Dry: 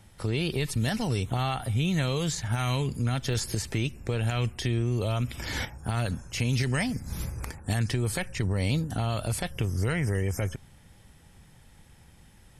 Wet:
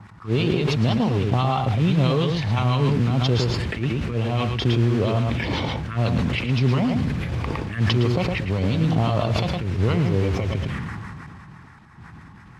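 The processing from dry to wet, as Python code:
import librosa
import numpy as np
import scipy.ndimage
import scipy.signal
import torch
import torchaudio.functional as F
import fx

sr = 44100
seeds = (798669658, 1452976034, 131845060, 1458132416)

p1 = fx.peak_eq(x, sr, hz=1100.0, db=10.0, octaves=0.22)
p2 = fx.over_compress(p1, sr, threshold_db=-33.0, ratio=-0.5)
p3 = p1 + (p2 * librosa.db_to_amplitude(-2.0))
p4 = fx.auto_swell(p3, sr, attack_ms=128.0)
p5 = fx.harmonic_tremolo(p4, sr, hz=6.0, depth_pct=70, crossover_hz=1000.0)
p6 = fx.env_phaser(p5, sr, low_hz=490.0, high_hz=1700.0, full_db=-26.0)
p7 = fx.mod_noise(p6, sr, seeds[0], snr_db=12)
p8 = fx.bandpass_edges(p7, sr, low_hz=100.0, high_hz=2400.0)
p9 = p8 + 10.0 ** (-6.0 / 20.0) * np.pad(p8, (int(111 * sr / 1000.0), 0))[:len(p8)]
p10 = fx.sustainer(p9, sr, db_per_s=22.0)
y = p10 * librosa.db_to_amplitude(8.0)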